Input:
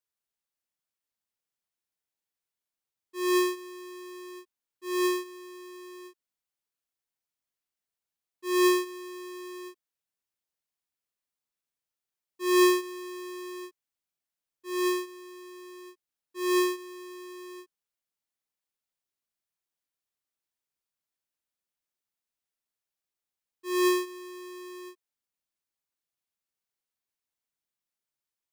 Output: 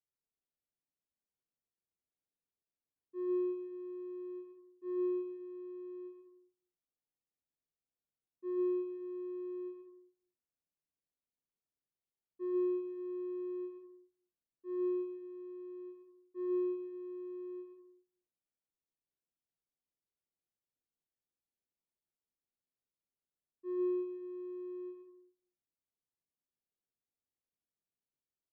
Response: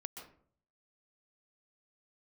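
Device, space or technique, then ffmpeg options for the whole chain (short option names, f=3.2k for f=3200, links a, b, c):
television next door: -filter_complex "[0:a]acompressor=threshold=-34dB:ratio=5,lowpass=490[a];[1:a]atrim=start_sample=2205[b];[a][b]afir=irnorm=-1:irlink=0,volume=3dB"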